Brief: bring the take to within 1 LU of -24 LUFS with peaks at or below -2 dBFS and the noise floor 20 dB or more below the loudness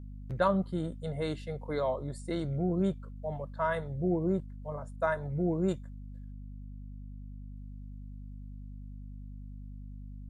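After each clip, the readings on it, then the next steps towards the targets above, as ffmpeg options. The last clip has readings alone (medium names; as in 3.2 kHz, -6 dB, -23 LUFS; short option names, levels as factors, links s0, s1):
hum 50 Hz; highest harmonic 250 Hz; hum level -41 dBFS; loudness -33.0 LUFS; peak level -14.5 dBFS; loudness target -24.0 LUFS
-> -af "bandreject=f=50:t=h:w=6,bandreject=f=100:t=h:w=6,bandreject=f=150:t=h:w=6,bandreject=f=200:t=h:w=6,bandreject=f=250:t=h:w=6"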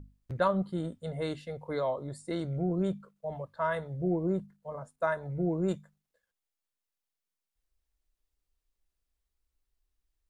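hum not found; loudness -33.0 LUFS; peak level -14.5 dBFS; loudness target -24.0 LUFS
-> -af "volume=2.82"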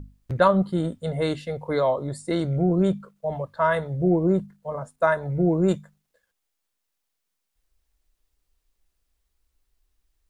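loudness -24.0 LUFS; peak level -5.5 dBFS; noise floor -79 dBFS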